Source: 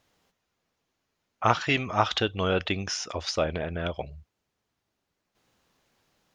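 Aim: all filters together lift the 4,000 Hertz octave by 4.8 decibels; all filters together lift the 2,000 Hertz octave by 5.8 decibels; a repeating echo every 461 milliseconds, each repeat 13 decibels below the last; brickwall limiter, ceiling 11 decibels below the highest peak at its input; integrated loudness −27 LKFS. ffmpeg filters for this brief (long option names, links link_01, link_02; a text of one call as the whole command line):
ffmpeg -i in.wav -af "equalizer=frequency=2000:width_type=o:gain=6.5,equalizer=frequency=4000:width_type=o:gain=4,alimiter=limit=-13.5dB:level=0:latency=1,aecho=1:1:461|922|1383:0.224|0.0493|0.0108,volume=1dB" out.wav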